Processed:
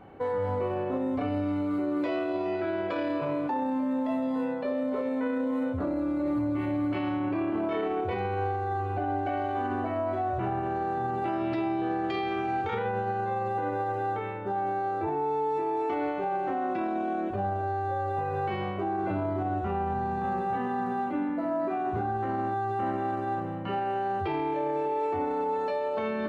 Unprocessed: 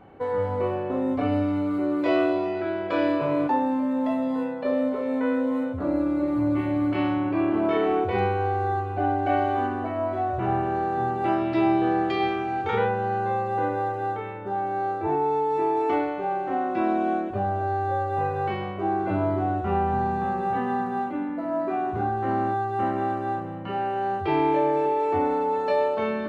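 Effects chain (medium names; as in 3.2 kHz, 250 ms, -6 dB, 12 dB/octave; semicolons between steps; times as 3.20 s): peak limiter -22 dBFS, peak gain reduction 10 dB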